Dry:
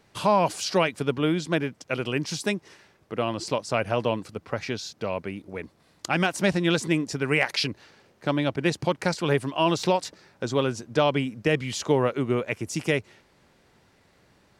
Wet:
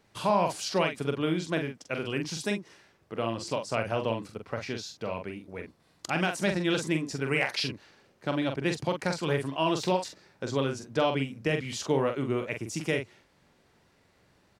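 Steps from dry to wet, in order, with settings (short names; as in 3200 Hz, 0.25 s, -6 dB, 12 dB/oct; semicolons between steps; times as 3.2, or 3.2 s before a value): doubler 44 ms -6 dB; gain -5 dB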